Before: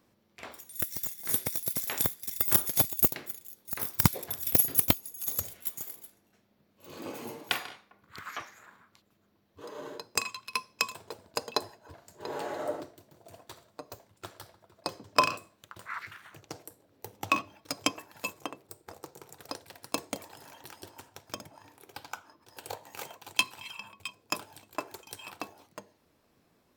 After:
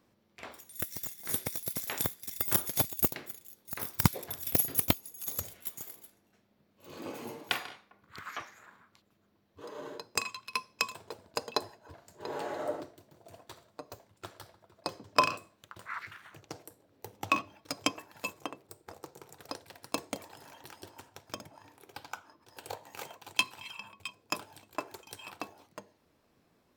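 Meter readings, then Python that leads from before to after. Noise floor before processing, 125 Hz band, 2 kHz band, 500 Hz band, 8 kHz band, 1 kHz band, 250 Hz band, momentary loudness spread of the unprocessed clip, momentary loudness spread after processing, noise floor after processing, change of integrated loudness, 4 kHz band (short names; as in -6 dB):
-70 dBFS, -1.0 dB, -1.5 dB, -1.0 dB, -4.0 dB, -1.0 dB, -1.0 dB, 23 LU, 23 LU, -71 dBFS, -4.0 dB, -2.0 dB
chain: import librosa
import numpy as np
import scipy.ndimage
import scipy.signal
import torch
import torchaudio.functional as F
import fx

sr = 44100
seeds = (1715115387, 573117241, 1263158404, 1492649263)

y = fx.high_shelf(x, sr, hz=6800.0, db=-4.0)
y = F.gain(torch.from_numpy(y), -1.0).numpy()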